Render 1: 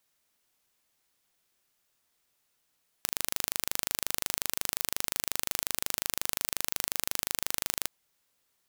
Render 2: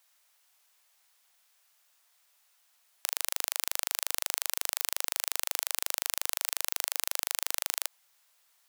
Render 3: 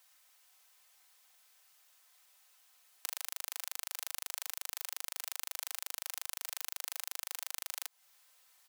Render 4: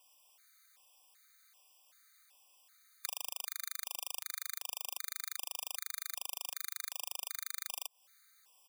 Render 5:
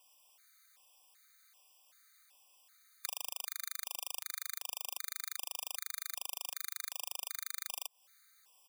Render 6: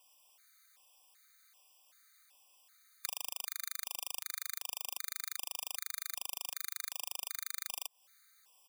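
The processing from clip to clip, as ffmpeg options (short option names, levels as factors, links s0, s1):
-af "highpass=f=640:w=0.5412,highpass=f=640:w=1.3066,alimiter=level_in=2.51:limit=0.891:release=50:level=0:latency=1,volume=0.891"
-af "acompressor=threshold=0.0178:ratio=6,aecho=1:1:3.9:0.51,volume=1.12"
-af "afftfilt=real='re*gt(sin(2*PI*1.3*pts/sr)*(1-2*mod(floor(b*sr/1024/1200),2)),0)':imag='im*gt(sin(2*PI*1.3*pts/sr)*(1-2*mod(floor(b*sr/1024/1200),2)),0)':win_size=1024:overlap=0.75,volume=1.41"
-af "acontrast=27,volume=0.562"
-af "aeval=exprs='0.251*(cos(1*acos(clip(val(0)/0.251,-1,1)))-cos(1*PI/2))+0.0316*(cos(2*acos(clip(val(0)/0.251,-1,1)))-cos(2*PI/2))':c=same"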